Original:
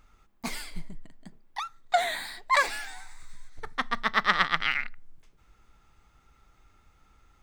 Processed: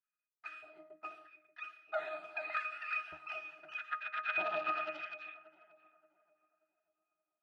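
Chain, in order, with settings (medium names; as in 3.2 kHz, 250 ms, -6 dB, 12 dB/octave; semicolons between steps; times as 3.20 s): high-pass 110 Hz 6 dB/octave; spectral gate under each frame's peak -10 dB weak; expander -57 dBFS; peaking EQ 1.7 kHz +14 dB 1.9 oct; ever faster or slower copies 640 ms, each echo +2 st, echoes 3; peaking EQ 200 Hz +14 dB 1.6 oct; LFO high-pass square 0.8 Hz 590–1600 Hz; pitch-class resonator D#, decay 0.17 s; on a send: tape echo 580 ms, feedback 40%, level -16 dB, low-pass 1.1 kHz; on the sum: trim +1 dB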